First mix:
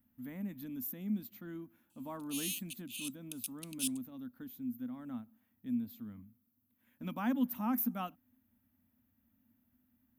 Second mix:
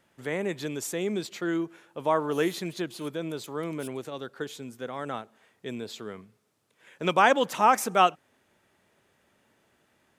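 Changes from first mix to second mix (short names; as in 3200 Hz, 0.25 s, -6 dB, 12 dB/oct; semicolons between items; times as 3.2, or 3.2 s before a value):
speech: remove EQ curve 100 Hz 0 dB, 150 Hz -15 dB, 250 Hz +6 dB, 390 Hz -30 dB, 570 Hz -22 dB, 980 Hz -20 dB, 8900 Hz -24 dB, 14000 Hz +12 dB; background -10.5 dB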